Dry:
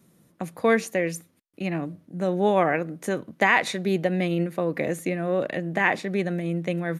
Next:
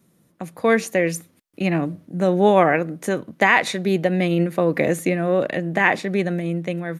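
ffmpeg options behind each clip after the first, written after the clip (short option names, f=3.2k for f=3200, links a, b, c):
-af "dynaudnorm=f=210:g=7:m=11.5dB,volume=-1dB"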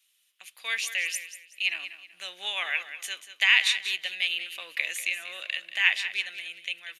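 -filter_complex "[0:a]highpass=f=2.9k:t=q:w=4.2,asplit=2[a][b];[b]aecho=0:1:189|378|567:0.251|0.0754|0.0226[c];[a][c]amix=inputs=2:normalize=0,volume=-2.5dB"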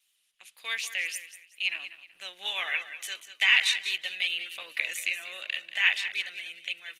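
-af "volume=-1dB" -ar 48000 -c:a libopus -b:a 16k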